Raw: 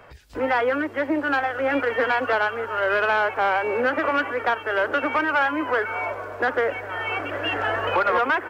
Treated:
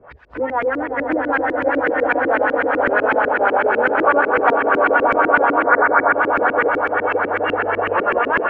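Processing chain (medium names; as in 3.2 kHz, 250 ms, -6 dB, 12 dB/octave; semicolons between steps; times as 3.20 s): 4.01–4.56 s: time-frequency box 320–1500 Hz +7 dB; on a send: echo with a slow build-up 96 ms, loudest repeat 8, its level -8 dB; on the sum: LFO low-pass saw up 8 Hz 270–2500 Hz; 5.63–6.13 s: resonant high shelf 2.4 kHz -7 dB, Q 3; tape noise reduction on one side only encoder only; trim -1.5 dB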